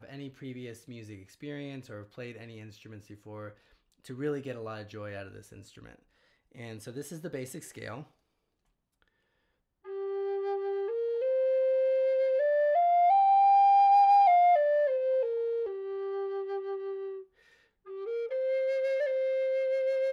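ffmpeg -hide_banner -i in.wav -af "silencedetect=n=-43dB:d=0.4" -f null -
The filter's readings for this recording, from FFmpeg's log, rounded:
silence_start: 3.51
silence_end: 4.04 | silence_duration: 0.54
silence_start: 5.95
silence_end: 6.55 | silence_duration: 0.61
silence_start: 8.03
silence_end: 9.86 | silence_duration: 1.83
silence_start: 17.22
silence_end: 17.87 | silence_duration: 0.65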